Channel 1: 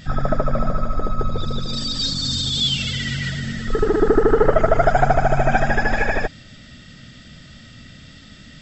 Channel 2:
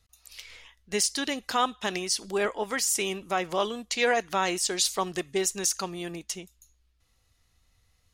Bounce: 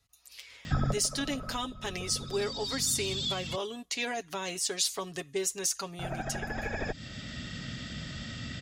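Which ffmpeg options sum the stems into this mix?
-filter_complex "[0:a]acompressor=threshold=0.0891:ratio=6,adelay=650,volume=1.41,asplit=3[s0][s1][s2];[s0]atrim=end=3.56,asetpts=PTS-STARTPTS,afade=t=out:st=3.556:d=0.004:c=hsin[s3];[s1]atrim=start=3.56:end=5.99,asetpts=PTS-STARTPTS,volume=0[s4];[s2]atrim=start=5.99,asetpts=PTS-STARTPTS,afade=t=in:d=0.004:c=hsin[s5];[s3][s4][s5]concat=n=3:v=0:a=1[s6];[1:a]aecho=1:1:7.2:0.6,volume=0.596,asplit=2[s7][s8];[s8]apad=whole_len=408603[s9];[s6][s9]sidechaincompress=threshold=0.0126:ratio=8:attack=5.3:release=1310[s10];[s10][s7]amix=inputs=2:normalize=0,highpass=41,acrossover=split=410|3000[s11][s12][s13];[s12]acompressor=threshold=0.0158:ratio=6[s14];[s11][s14][s13]amix=inputs=3:normalize=0"

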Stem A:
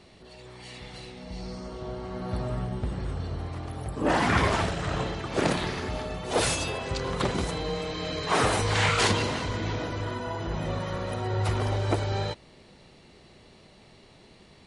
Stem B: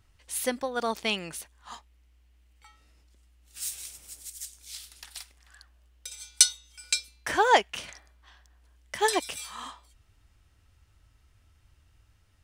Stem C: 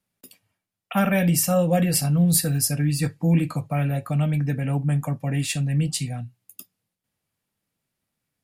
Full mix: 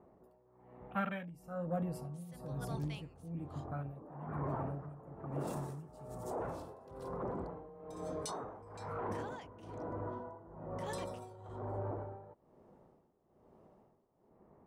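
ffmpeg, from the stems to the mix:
-filter_complex "[0:a]lowpass=f=1100:w=0.5412,lowpass=f=1100:w=1.3066,volume=0.596[s0];[1:a]adelay=1850,volume=0.126[s1];[2:a]adynamicequalizer=threshold=0.00708:dfrequency=1300:dqfactor=1.5:tfrequency=1300:tqfactor=1.5:attack=5:release=100:ratio=0.375:range=4:mode=boostabove:tftype=bell,afwtdn=0.0562,volume=0.158,asplit=2[s2][s3];[s3]apad=whole_len=646524[s4];[s0][s4]sidechaincompress=threshold=0.01:ratio=8:attack=16:release=234[s5];[s5][s1]amix=inputs=2:normalize=0,lowshelf=f=140:g=-11,alimiter=level_in=2.37:limit=0.0631:level=0:latency=1:release=15,volume=0.422,volume=1[s6];[s2][s6]amix=inputs=2:normalize=0,tremolo=f=1.1:d=0.83"

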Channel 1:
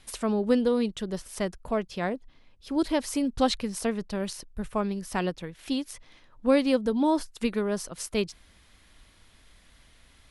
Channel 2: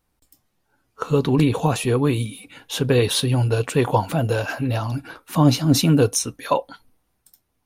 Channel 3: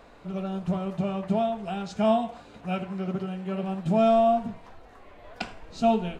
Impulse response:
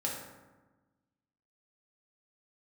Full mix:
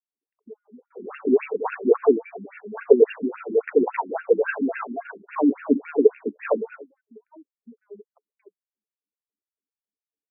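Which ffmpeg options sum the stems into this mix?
-filter_complex "[0:a]highpass=100,highshelf=f=2900:g=-10,acompressor=threshold=0.0224:ratio=10,adelay=250,volume=0.398[s0];[1:a]highpass=f=140:w=0.5412,highpass=f=140:w=1.3066,aeval=exprs='0.531*sin(PI/2*1.58*val(0)/0.531)':c=same,volume=0.531[s1];[2:a]asoftclip=type=tanh:threshold=0.0473,asplit=2[s2][s3];[s3]adelay=11.1,afreqshift=-2.3[s4];[s2][s4]amix=inputs=2:normalize=1,adelay=650,volume=1.26[s5];[s0][s1][s5]amix=inputs=3:normalize=0,anlmdn=0.251,equalizer=f=430:w=5.8:g=14.5,afftfilt=real='re*between(b*sr/1024,250*pow(2000/250,0.5+0.5*sin(2*PI*3.6*pts/sr))/1.41,250*pow(2000/250,0.5+0.5*sin(2*PI*3.6*pts/sr))*1.41)':imag='im*between(b*sr/1024,250*pow(2000/250,0.5+0.5*sin(2*PI*3.6*pts/sr))/1.41,250*pow(2000/250,0.5+0.5*sin(2*PI*3.6*pts/sr))*1.41)':win_size=1024:overlap=0.75"

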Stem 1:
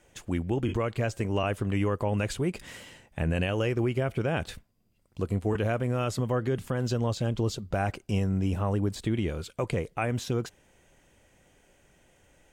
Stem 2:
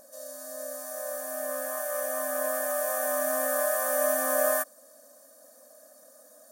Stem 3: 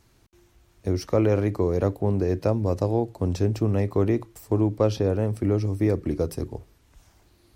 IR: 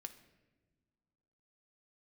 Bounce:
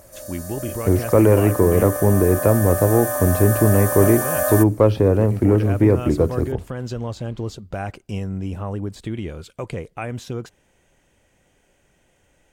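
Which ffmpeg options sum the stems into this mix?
-filter_complex "[0:a]adynamicequalizer=threshold=0.00708:dfrequency=1800:dqfactor=0.7:tfrequency=1800:tqfactor=0.7:attack=5:release=100:ratio=0.375:range=2:mode=cutabove:tftype=highshelf,volume=0.473,asplit=3[s0][s1][s2];[s0]atrim=end=1.9,asetpts=PTS-STARTPTS,afade=t=out:st=1.896:d=0.004:c=hsin[s3];[s1]atrim=start=1.9:end=4,asetpts=PTS-STARTPTS,volume=0[s4];[s2]atrim=start=4,asetpts=PTS-STARTPTS,afade=t=in:d=0.004:c=hsin[s5];[s3][s4][s5]concat=n=3:v=0:a=1[s6];[1:a]volume=0.75[s7];[2:a]lowpass=2400,volume=1.19[s8];[s6][s7][s8]amix=inputs=3:normalize=0,acontrast=67"

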